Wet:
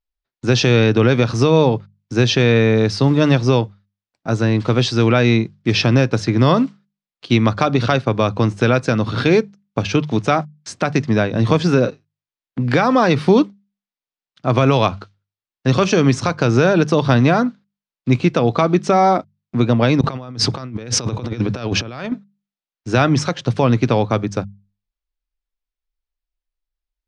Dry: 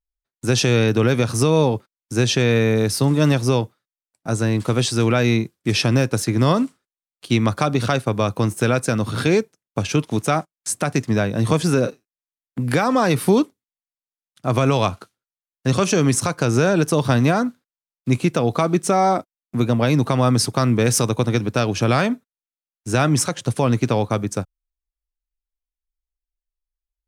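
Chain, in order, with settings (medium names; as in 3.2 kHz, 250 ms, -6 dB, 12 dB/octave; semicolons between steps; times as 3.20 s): low-pass 5.2 kHz 24 dB/octave; hum notches 50/100/150/200 Hz; 20.01–22.12 s: compressor with a negative ratio -25 dBFS, ratio -0.5; trim +3.5 dB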